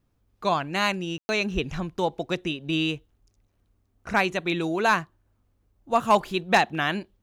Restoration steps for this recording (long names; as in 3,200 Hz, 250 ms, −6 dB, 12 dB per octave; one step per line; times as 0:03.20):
clipped peaks rebuilt −10.5 dBFS
ambience match 0:01.18–0:01.29